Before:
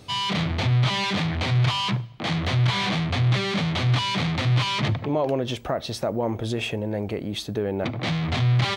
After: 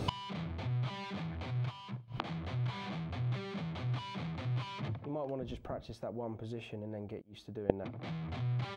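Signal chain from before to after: 5.40–5.91 s: octave divider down 1 oct, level +1 dB; 7.19–7.70 s: inverted gate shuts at -27 dBFS, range -27 dB; band-stop 1.9 kHz, Q 18; inverted gate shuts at -26 dBFS, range -26 dB; treble shelf 2.5 kHz -11.5 dB; 1.51–2.08 s: upward expansion 1.5:1, over -59 dBFS; trim +11.5 dB

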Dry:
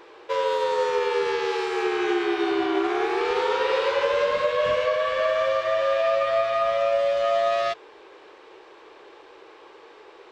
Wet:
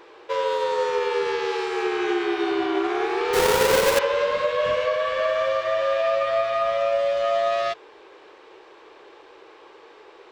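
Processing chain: 3.33–3.99 s: square wave that keeps the level

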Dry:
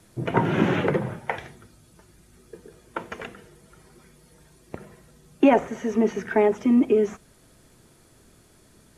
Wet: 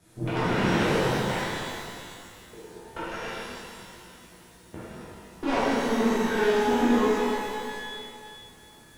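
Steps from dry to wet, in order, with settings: valve stage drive 24 dB, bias 0.6; pitch-shifted reverb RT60 2.2 s, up +12 st, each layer -8 dB, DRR -11 dB; trim -6 dB

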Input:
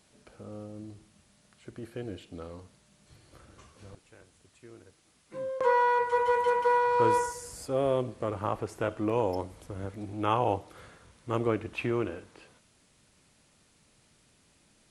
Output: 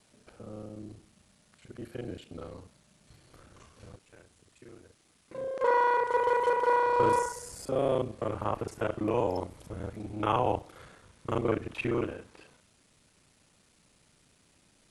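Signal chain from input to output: time reversed locally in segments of 33 ms

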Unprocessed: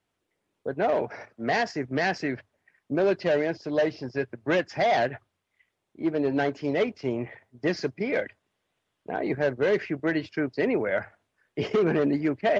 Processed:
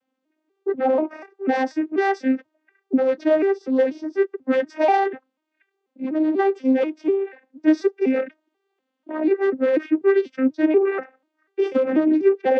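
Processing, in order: vocoder on a broken chord minor triad, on C4, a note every 244 ms; trim +7 dB

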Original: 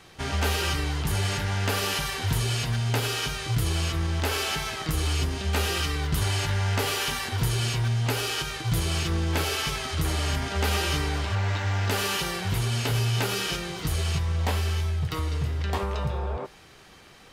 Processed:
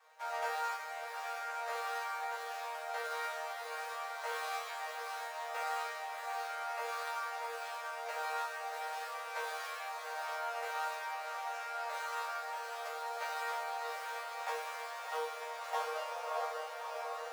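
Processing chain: median filter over 15 samples; steep high-pass 500 Hz 96 dB/octave; chord resonator D#3 fifth, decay 0.61 s; echo that smears into a reverb 631 ms, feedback 66%, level -6 dB; gain riding 2 s; trim +11 dB

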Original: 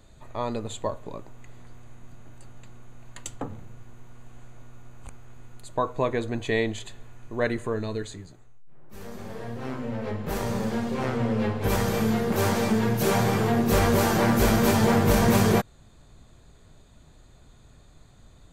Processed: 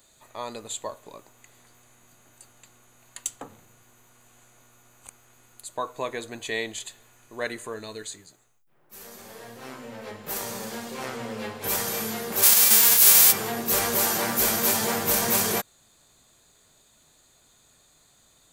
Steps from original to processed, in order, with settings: 12.42–13.31 s: formants flattened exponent 0.3; RIAA curve recording; trim -3.5 dB

